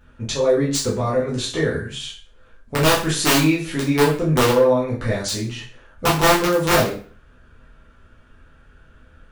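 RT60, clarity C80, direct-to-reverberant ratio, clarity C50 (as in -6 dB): 0.40 s, 11.0 dB, -7.0 dB, 6.5 dB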